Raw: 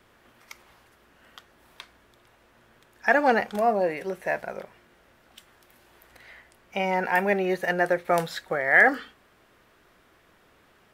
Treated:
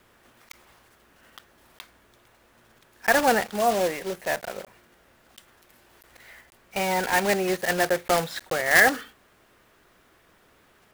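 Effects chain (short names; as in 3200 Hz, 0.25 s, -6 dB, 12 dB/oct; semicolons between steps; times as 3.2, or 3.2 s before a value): block floating point 3-bit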